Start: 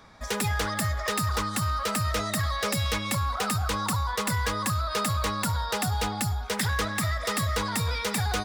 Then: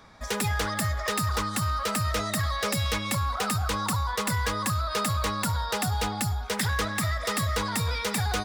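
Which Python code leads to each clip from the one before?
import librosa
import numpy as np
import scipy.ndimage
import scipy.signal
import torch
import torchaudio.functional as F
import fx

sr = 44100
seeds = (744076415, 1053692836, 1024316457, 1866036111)

y = x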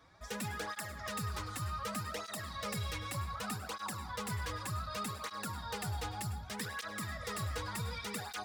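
y = 10.0 ** (-22.5 / 20.0) * np.tanh(x / 10.0 ** (-22.5 / 20.0))
y = fx.rev_plate(y, sr, seeds[0], rt60_s=0.51, hf_ratio=0.35, predelay_ms=90, drr_db=9.0)
y = fx.flanger_cancel(y, sr, hz=0.66, depth_ms=5.2)
y = y * librosa.db_to_amplitude(-7.5)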